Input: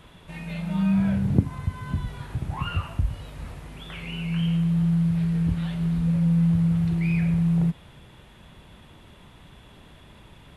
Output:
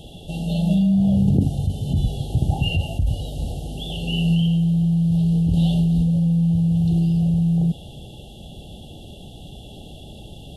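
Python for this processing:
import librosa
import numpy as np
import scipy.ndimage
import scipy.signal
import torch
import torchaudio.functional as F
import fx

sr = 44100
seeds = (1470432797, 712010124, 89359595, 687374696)

p1 = fx.over_compress(x, sr, threshold_db=-26.0, ratio=-0.5)
p2 = x + F.gain(torch.from_numpy(p1), 3.0).numpy()
p3 = fx.brickwall_bandstop(p2, sr, low_hz=860.0, high_hz=2700.0)
y = fx.doubler(p3, sr, ms=21.0, db=-13, at=(0.72, 1.73))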